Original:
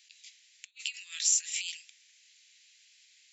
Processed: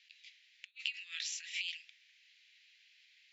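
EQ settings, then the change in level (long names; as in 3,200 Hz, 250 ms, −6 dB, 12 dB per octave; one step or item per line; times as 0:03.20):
four-pole ladder band-pass 2,000 Hz, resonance 20%
high-frequency loss of the air 150 metres
high-shelf EQ 2,100 Hz +11.5 dB
+7.0 dB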